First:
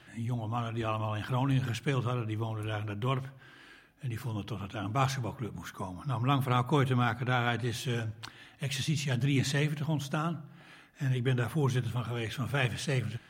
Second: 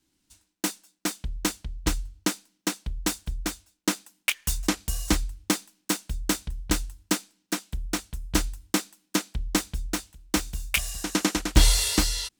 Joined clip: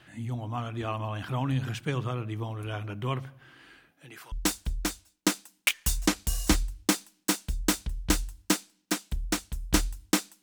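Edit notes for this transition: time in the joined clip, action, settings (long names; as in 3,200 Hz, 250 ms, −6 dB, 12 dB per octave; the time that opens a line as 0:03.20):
first
0:03.90–0:04.32: high-pass filter 170 Hz → 1,000 Hz
0:04.32: continue with second from 0:02.93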